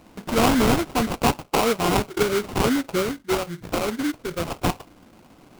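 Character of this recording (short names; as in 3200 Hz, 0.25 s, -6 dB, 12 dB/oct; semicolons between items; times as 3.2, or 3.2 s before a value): aliases and images of a low sample rate 1800 Hz, jitter 20%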